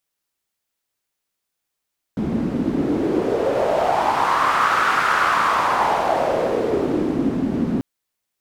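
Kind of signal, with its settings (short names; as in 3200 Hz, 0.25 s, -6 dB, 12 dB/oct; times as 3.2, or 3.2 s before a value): wind-like swept noise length 5.64 s, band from 230 Hz, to 1300 Hz, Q 3.8, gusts 1, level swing 3.5 dB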